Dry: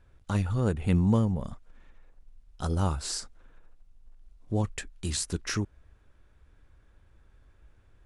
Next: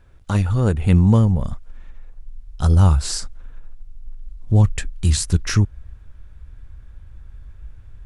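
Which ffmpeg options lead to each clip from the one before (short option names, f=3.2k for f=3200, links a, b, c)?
-af "asubboost=boost=4:cutoff=160,volume=7.5dB"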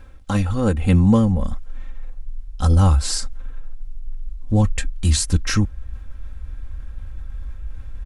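-af "aecho=1:1:3.8:0.65,areverse,acompressor=mode=upward:threshold=-21dB:ratio=2.5,areverse"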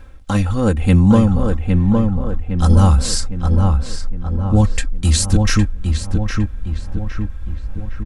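-filter_complex "[0:a]asplit=2[a][b];[b]adelay=810,lowpass=f=2.2k:p=1,volume=-3.5dB,asplit=2[c][d];[d]adelay=810,lowpass=f=2.2k:p=1,volume=0.53,asplit=2[e][f];[f]adelay=810,lowpass=f=2.2k:p=1,volume=0.53,asplit=2[g][h];[h]adelay=810,lowpass=f=2.2k:p=1,volume=0.53,asplit=2[i][j];[j]adelay=810,lowpass=f=2.2k:p=1,volume=0.53,asplit=2[k][l];[l]adelay=810,lowpass=f=2.2k:p=1,volume=0.53,asplit=2[m][n];[n]adelay=810,lowpass=f=2.2k:p=1,volume=0.53[o];[a][c][e][g][i][k][m][o]amix=inputs=8:normalize=0,volume=3dB"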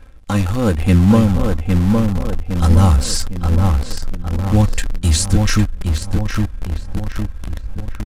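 -filter_complex "[0:a]asplit=2[a][b];[b]acrusher=bits=4:dc=4:mix=0:aa=0.000001,volume=-6.5dB[c];[a][c]amix=inputs=2:normalize=0,aresample=32000,aresample=44100,volume=-3.5dB"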